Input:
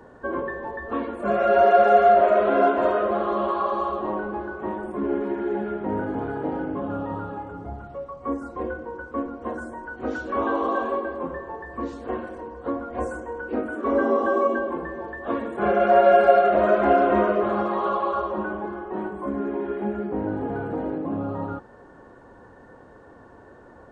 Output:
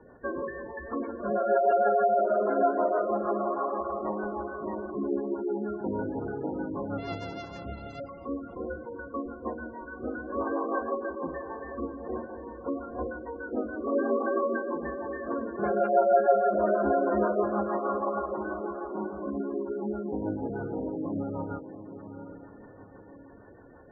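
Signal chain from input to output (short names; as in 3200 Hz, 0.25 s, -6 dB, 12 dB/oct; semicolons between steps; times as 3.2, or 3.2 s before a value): 6.98–8 sample sorter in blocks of 64 samples; soft clip -8.5 dBFS, distortion -21 dB; rotary speaker horn 6.3 Hz; diffused feedback echo 0.761 s, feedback 40%, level -10.5 dB; spectral gate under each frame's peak -20 dB strong; gain -3 dB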